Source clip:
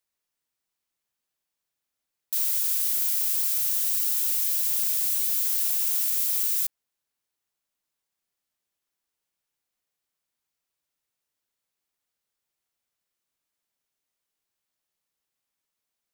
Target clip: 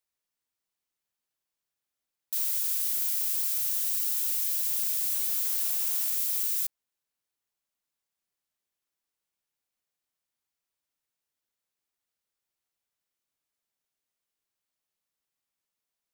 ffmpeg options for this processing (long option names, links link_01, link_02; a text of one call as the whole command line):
ffmpeg -i in.wav -filter_complex "[0:a]asettb=1/sr,asplit=3[link_01][link_02][link_03];[link_01]atrim=end=5.114[link_04];[link_02]atrim=start=5.11:end=6.15,asetpts=PTS-STARTPTS,afade=type=in:duration=0.004:curve=qsin,afade=type=out:start_time=1.036:duration=0.004:curve=qsin,equalizer=frequency=490:width=0.8:gain=12.5[link_05];[link_03]atrim=start=6.146[link_06];[link_04][link_05]acrossfade=duration=0.004:curve1=hsin:curve2=qsin[link_07];[link_07][link_06]acrossfade=duration=0.004:curve1=qsin:curve2=hsin,volume=-3.5dB" out.wav